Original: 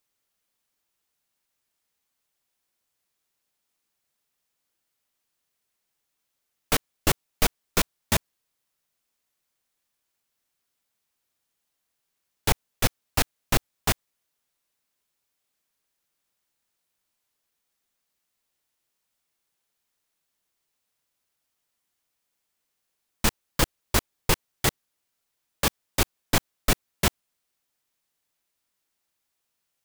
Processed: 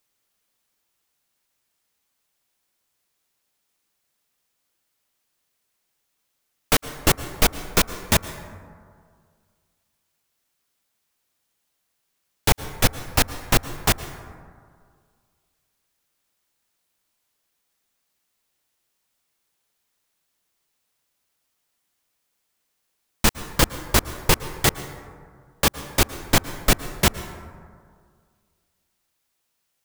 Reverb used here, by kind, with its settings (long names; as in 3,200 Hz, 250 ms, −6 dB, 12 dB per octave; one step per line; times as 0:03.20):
dense smooth reverb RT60 2 s, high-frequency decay 0.35×, pre-delay 100 ms, DRR 13 dB
level +4.5 dB